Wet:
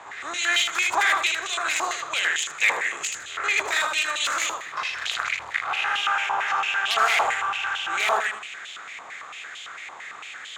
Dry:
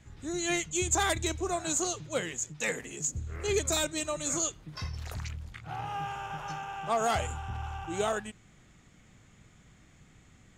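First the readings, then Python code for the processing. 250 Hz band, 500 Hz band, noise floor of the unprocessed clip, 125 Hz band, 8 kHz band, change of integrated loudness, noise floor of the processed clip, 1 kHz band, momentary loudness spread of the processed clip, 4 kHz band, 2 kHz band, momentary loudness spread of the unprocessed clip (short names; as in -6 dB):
-11.0 dB, -2.0 dB, -59 dBFS, under -20 dB, +1.0 dB, +8.5 dB, -40 dBFS, +9.5 dB, 16 LU, +12.0 dB, +15.5 dB, 11 LU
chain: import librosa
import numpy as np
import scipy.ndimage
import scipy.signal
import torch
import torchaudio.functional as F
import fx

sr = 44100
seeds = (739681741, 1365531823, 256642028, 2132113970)

p1 = fx.bin_compress(x, sr, power=0.6)
p2 = fx.tilt_eq(p1, sr, slope=2.0)
p3 = fx.rider(p2, sr, range_db=3, speed_s=2.0)
p4 = p2 + (p3 * librosa.db_to_amplitude(2.0))
p5 = (np.mod(10.0 ** (6.5 / 20.0) * p4 + 1.0, 2.0) - 1.0) / 10.0 ** (6.5 / 20.0)
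p6 = p5 + fx.echo_feedback(p5, sr, ms=79, feedback_pct=34, wet_db=-4.0, dry=0)
p7 = fx.filter_held_bandpass(p6, sr, hz=8.9, low_hz=990.0, high_hz=3100.0)
y = p7 * librosa.db_to_amplitude(6.0)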